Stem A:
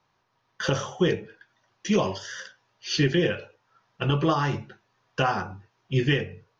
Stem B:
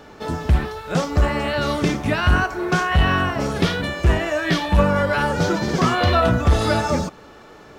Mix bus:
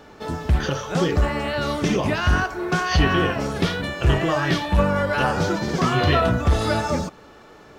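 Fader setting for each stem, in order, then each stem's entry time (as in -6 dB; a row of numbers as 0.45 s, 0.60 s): -0.5 dB, -2.5 dB; 0.00 s, 0.00 s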